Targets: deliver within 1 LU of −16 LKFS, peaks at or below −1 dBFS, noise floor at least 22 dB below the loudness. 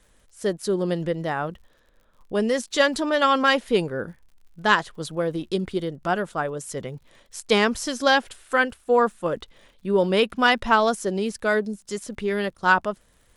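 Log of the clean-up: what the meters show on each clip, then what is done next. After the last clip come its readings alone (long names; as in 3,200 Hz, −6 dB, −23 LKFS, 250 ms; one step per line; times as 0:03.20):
crackle rate 53 per second; integrated loudness −23.5 LKFS; sample peak −4.0 dBFS; target loudness −16.0 LKFS
→ click removal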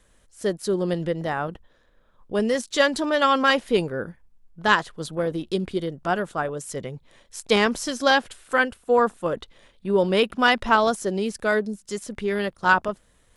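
crackle rate 0.30 per second; integrated loudness −23.5 LKFS; sample peak −4.0 dBFS; target loudness −16.0 LKFS
→ level +7.5 dB
brickwall limiter −1 dBFS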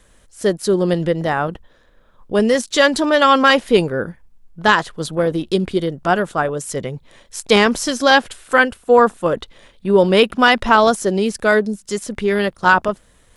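integrated loudness −16.5 LKFS; sample peak −1.0 dBFS; background noise floor −53 dBFS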